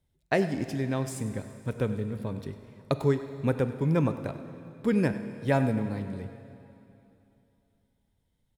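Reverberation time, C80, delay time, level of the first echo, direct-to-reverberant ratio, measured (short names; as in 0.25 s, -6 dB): 2.9 s, 10.0 dB, 98 ms, -16.0 dB, 9.0 dB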